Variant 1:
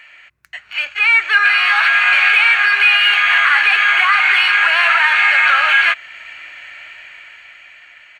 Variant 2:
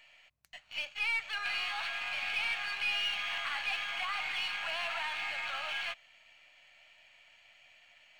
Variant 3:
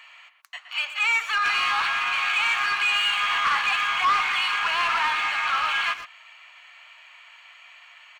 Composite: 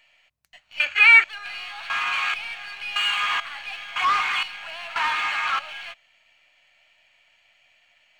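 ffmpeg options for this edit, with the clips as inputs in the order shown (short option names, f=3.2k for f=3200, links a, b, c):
-filter_complex "[2:a]asplit=4[a][b][c][d];[1:a]asplit=6[e][f][g][h][i][j];[e]atrim=end=0.802[k];[0:a]atrim=start=0.798:end=1.242[l];[f]atrim=start=1.238:end=1.902[m];[a]atrim=start=1.898:end=2.342[n];[g]atrim=start=2.338:end=2.962[o];[b]atrim=start=2.958:end=3.402[p];[h]atrim=start=3.398:end=3.962[q];[c]atrim=start=3.958:end=4.432[r];[i]atrim=start=4.428:end=4.962[s];[d]atrim=start=4.958:end=5.592[t];[j]atrim=start=5.588[u];[k][l]acrossfade=d=0.004:c1=hsin:c2=hsin[v];[v][m]acrossfade=d=0.004:c1=hsin:c2=hsin[w];[w][n]acrossfade=d=0.004:c1=hsin:c2=hsin[x];[x][o]acrossfade=d=0.004:c1=hsin:c2=hsin[y];[y][p]acrossfade=d=0.004:c1=hsin:c2=hsin[z];[z][q]acrossfade=d=0.004:c1=hsin:c2=hsin[aa];[aa][r]acrossfade=d=0.004:c1=hsin:c2=hsin[ab];[ab][s]acrossfade=d=0.004:c1=hsin:c2=hsin[ac];[ac][t]acrossfade=d=0.004:c1=hsin:c2=hsin[ad];[ad][u]acrossfade=d=0.004:c1=hsin:c2=hsin"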